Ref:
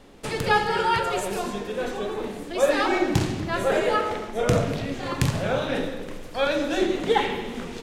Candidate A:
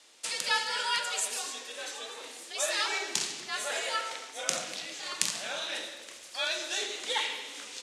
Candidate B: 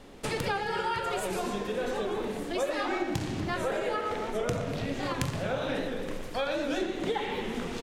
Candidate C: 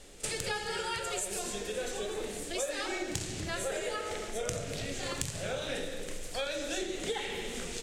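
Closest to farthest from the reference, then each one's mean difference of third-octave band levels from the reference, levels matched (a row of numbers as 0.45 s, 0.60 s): B, C, A; 3.5 dB, 6.5 dB, 11.0 dB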